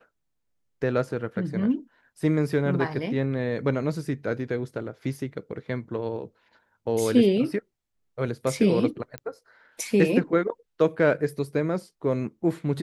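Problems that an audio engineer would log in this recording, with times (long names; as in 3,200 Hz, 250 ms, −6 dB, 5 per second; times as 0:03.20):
0:09.18: click −19 dBFS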